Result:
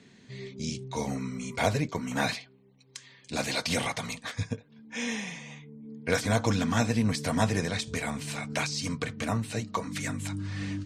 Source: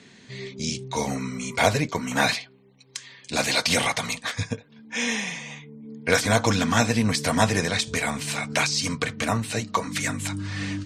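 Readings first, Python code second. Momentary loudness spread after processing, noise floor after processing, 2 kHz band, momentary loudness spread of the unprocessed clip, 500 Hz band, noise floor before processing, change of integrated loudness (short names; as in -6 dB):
15 LU, -58 dBFS, -8.0 dB, 15 LU, -5.5 dB, -54 dBFS, -6.0 dB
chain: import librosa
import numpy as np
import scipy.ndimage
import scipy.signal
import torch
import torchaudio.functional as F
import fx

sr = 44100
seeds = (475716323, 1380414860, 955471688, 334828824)

y = fx.low_shelf(x, sr, hz=500.0, db=6.0)
y = y * librosa.db_to_amplitude(-8.5)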